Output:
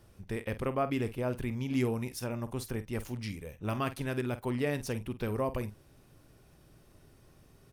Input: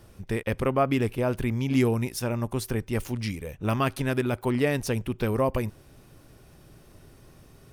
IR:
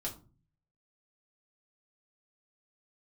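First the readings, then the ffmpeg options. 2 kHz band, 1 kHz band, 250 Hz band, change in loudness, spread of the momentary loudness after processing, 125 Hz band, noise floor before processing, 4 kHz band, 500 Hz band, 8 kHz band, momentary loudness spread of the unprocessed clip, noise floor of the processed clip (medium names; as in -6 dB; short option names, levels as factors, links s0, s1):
-7.5 dB, -7.0 dB, -7.0 dB, -7.5 dB, 8 LU, -7.5 dB, -54 dBFS, -7.5 dB, -7.0 dB, -7.5 dB, 8 LU, -61 dBFS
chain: -filter_complex "[0:a]asplit=2[s0][s1];[s1]adelay=48,volume=0.224[s2];[s0][s2]amix=inputs=2:normalize=0,volume=0.422"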